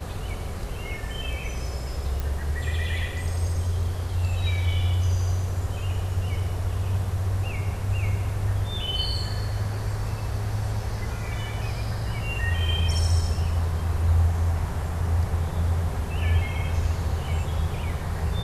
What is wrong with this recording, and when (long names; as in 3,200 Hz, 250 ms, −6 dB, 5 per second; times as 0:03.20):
0:02.20: click